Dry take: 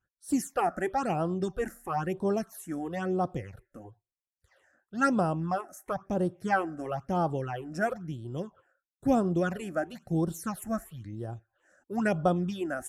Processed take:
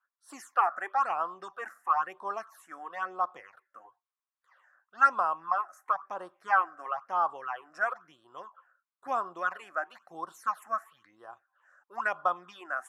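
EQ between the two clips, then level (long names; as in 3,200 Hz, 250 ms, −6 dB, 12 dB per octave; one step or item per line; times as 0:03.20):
high-pass with resonance 1,100 Hz, resonance Q 4.6
low-pass filter 2,000 Hz 6 dB per octave
0.0 dB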